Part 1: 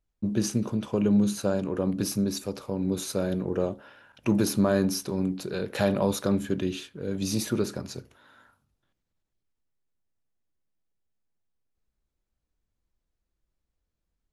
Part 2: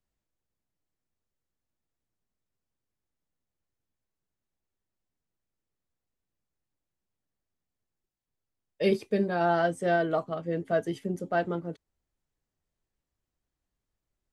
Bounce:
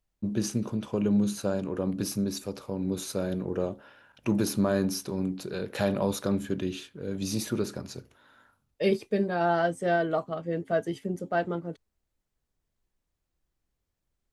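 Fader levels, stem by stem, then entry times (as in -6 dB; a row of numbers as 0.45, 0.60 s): -2.5, 0.0 dB; 0.00, 0.00 s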